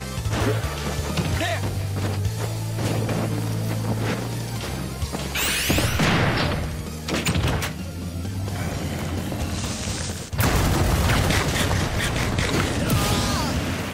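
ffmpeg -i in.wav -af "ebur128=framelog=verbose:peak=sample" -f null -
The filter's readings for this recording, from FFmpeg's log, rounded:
Integrated loudness:
  I:         -23.9 LUFS
  Threshold: -33.9 LUFS
Loudness range:
  LRA:         4.7 LU
  Threshold: -44.0 LUFS
  LRA low:   -26.5 LUFS
  LRA high:  -21.8 LUFS
Sample peak:
  Peak:       -5.8 dBFS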